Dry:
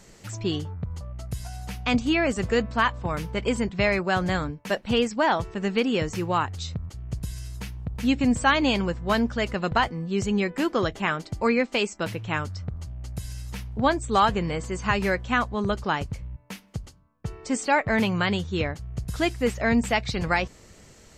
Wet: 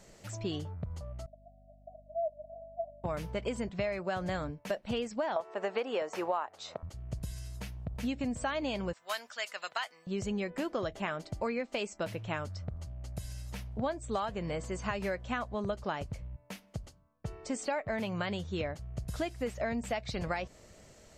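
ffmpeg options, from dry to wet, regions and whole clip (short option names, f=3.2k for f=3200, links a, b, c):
-filter_complex "[0:a]asettb=1/sr,asplit=3[a][b][c];[a]atrim=end=1.264[d];[b]atrim=start=1.26:end=3.04,asetpts=PTS-STARTPTS,afade=t=in:d=0.004:c=qsin,afade=t=out:st=1.776:d=0.004:c=qsin,asuperpass=centerf=640:order=8:qfactor=7,aeval=exprs='val(0)+0.00251*(sin(2*PI*50*n/s)+sin(2*PI*2*50*n/s)/2+sin(2*PI*3*50*n/s)/3+sin(2*PI*4*50*n/s)/4+sin(2*PI*5*50*n/s)/5)':c=same[e];[c]atrim=start=3.036[f];[d][e]acrossfade=d=0.004:c1=hsin:c2=qsin[g];[g][f]acrossfade=d=0.004:c1=qsin:c2=hsin,asettb=1/sr,asplit=3[h][i][j];[h]atrim=end=5.364[k];[i]atrim=start=5.36:end=6.83,asetpts=PTS-STARTPTS,afade=t=in:d=0.004:c=qsin,afade=t=out:st=1.466:d=0.004:c=qsin,highpass=370,equalizer=f=840:t=o:w=2.5:g=13.5[l];[j]atrim=start=6.826[m];[k][l]acrossfade=d=0.004:c1=hsin:c2=qsin[n];[n][m]acrossfade=d=0.004:c1=qsin:c2=hsin,asettb=1/sr,asplit=3[o][p][q];[o]atrim=end=8.934[r];[p]atrim=start=8.93:end=10.07,asetpts=PTS-STARTPTS,afade=t=in:d=0.004:c=qsin,afade=t=out:st=1.136:d=0.004:c=qsin,highpass=1.3k,highshelf=f=5.8k:g=10.5[s];[q]atrim=start=10.066[t];[r][s]acrossfade=d=0.004:c1=hsin:c2=qsin[u];[u][t]acrossfade=d=0.004:c1=qsin:c2=hsin,equalizer=f=620:w=3.3:g=8.5,acompressor=threshold=-24dB:ratio=6,volume=-6.5dB"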